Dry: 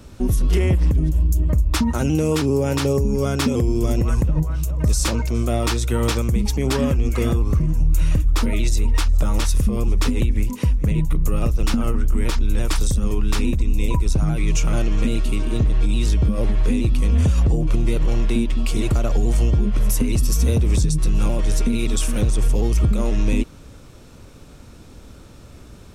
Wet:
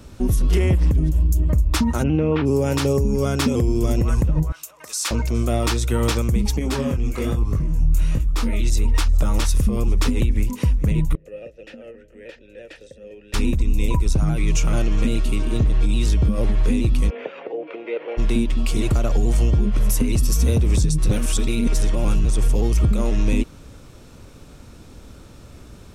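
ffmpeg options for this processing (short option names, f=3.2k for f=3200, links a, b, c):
-filter_complex "[0:a]asplit=3[a][b][c];[a]afade=t=out:st=2.02:d=0.02[d];[b]lowpass=f=2.8k:w=0.5412,lowpass=f=2.8k:w=1.3066,afade=t=in:st=2.02:d=0.02,afade=t=out:st=2.45:d=0.02[e];[c]afade=t=in:st=2.45:d=0.02[f];[d][e][f]amix=inputs=3:normalize=0,asettb=1/sr,asplit=3[g][h][i];[g]atrim=end=4.524[j];[h]atrim=start=4.52:end=5.11,asetpts=PTS-STARTPTS,afade=t=in:d=0.004:c=qsin,afade=t=out:st=0.586:d=0.004:c=qsin,highpass=1.1k[k];[i]atrim=start=5.106[l];[j][k]acrossfade=d=0.004:c1=hsin:c2=qsin[m];[m][l]acrossfade=d=0.004:c1=qsin:c2=hsin,asettb=1/sr,asplit=3[n][o][p];[n]atrim=end=6.594[q];[o]atrim=start=6.59:end=8.7,asetpts=PTS-STARTPTS,afade=t=in:d=0.004:c=qsin,afade=t=out:st=2.106:d=0.004:c=qsin,flanger=delay=18:depth=7.1:speed=1.2[r];[p]atrim=start=8.696[s];[q][r]acrossfade=d=0.004:c1=hsin:c2=qsin[t];[t][s]acrossfade=d=0.004:c1=qsin:c2=hsin,asettb=1/sr,asplit=3[u][v][w];[u]atrim=end=11.154[x];[v]atrim=start=11.15:end=13.34,asetpts=PTS-STARTPTS,afade=t=in:d=0.004:c=qsin,afade=t=out:st=2.186:d=0.004:c=qsin,asplit=3[y][z][aa];[y]bandpass=f=530:t=q:w=8,volume=0dB[ab];[z]bandpass=f=1.84k:t=q:w=8,volume=-6dB[ac];[aa]bandpass=f=2.48k:t=q:w=8,volume=-9dB[ad];[ab][ac][ad]amix=inputs=3:normalize=0[ae];[w]atrim=start=13.336[af];[x][ae]acrossfade=d=0.004:c1=hsin:c2=qsin[ag];[ag][af]acrossfade=d=0.004:c1=qsin:c2=hsin,asplit=3[ah][ai][aj];[ah]afade=t=out:st=17.09:d=0.02[ak];[ai]highpass=f=410:w=0.5412,highpass=f=410:w=1.3066,equalizer=f=480:t=q:w=4:g=7,equalizer=f=1.1k:t=q:w=4:g=-7,equalizer=f=2.2k:t=q:w=4:g=4,lowpass=f=2.7k:w=0.5412,lowpass=f=2.7k:w=1.3066,afade=t=in:st=17.09:d=0.02,afade=t=out:st=18.17:d=0.02[al];[aj]afade=t=in:st=18.17:d=0.02[am];[ak][al][am]amix=inputs=3:normalize=0,asplit=3[an][ao][ap];[an]atrim=end=21.092[aq];[ao]atrim=start=21.088:end=22.252,asetpts=PTS-STARTPTS,areverse[ar];[ap]atrim=start=22.248[as];[aq][ar]acrossfade=d=0.004:c1=hsin:c2=hsin[at];[at][as]acrossfade=d=0.004:c1=hsin:c2=hsin"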